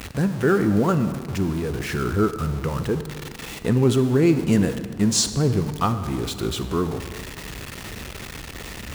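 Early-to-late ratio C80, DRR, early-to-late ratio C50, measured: 12.0 dB, 10.0 dB, 10.5 dB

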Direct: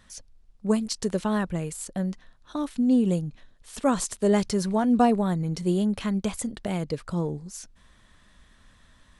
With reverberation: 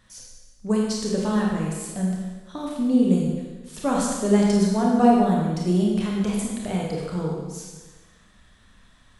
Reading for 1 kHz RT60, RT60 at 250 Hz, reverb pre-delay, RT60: 1.3 s, 1.3 s, 25 ms, 1.3 s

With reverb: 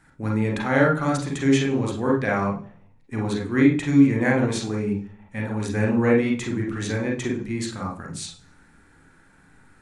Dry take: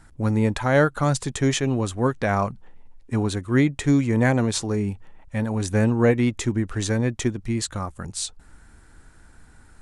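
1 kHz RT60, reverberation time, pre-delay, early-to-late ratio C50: 0.40 s, 0.45 s, 37 ms, 5.0 dB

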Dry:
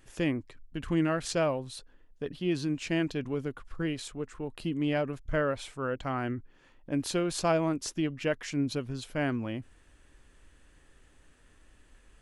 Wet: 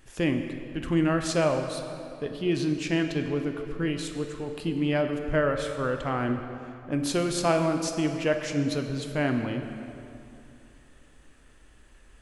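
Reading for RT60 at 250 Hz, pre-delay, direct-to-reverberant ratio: 2.9 s, 6 ms, 5.0 dB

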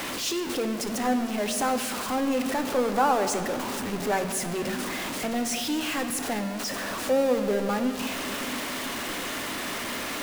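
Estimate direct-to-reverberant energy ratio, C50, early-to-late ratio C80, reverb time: 6.5 dB, 8.0 dB, 9.0 dB, 2.6 s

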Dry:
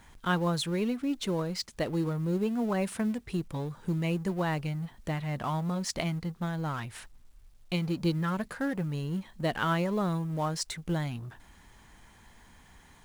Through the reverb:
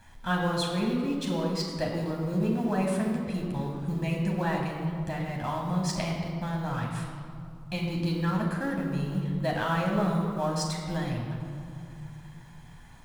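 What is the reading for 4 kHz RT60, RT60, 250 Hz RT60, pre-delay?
1.4 s, 2.5 s, 3.1 s, 9 ms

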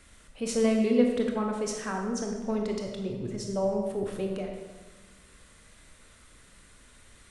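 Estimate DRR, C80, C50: 1.5 dB, 5.5 dB, 3.5 dB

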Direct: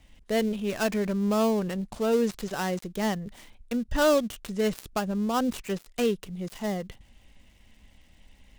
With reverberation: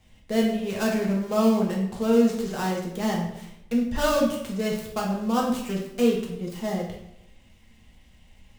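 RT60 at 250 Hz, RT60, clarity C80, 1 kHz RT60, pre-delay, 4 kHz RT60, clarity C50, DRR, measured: 0.90 s, 0.80 s, 7.5 dB, 0.80 s, 3 ms, 0.65 s, 4.0 dB, -3.0 dB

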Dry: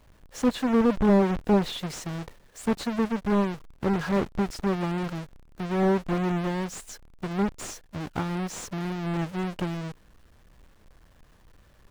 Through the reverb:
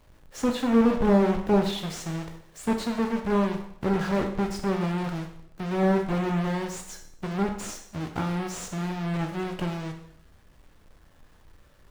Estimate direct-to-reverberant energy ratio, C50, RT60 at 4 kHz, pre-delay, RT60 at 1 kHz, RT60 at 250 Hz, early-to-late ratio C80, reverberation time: 3.5 dB, 7.5 dB, 0.65 s, 6 ms, 0.70 s, 0.70 s, 10.5 dB, 0.65 s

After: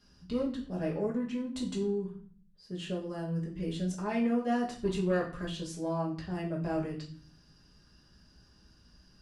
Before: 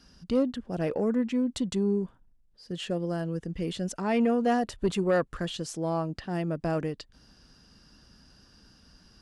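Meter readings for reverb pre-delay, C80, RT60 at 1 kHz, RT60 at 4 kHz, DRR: 5 ms, 13.0 dB, 0.45 s, 0.40 s, -4.0 dB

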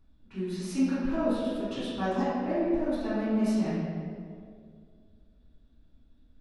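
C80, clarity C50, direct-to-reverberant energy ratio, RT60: -0.5 dB, -3.0 dB, -14.0 dB, 2.2 s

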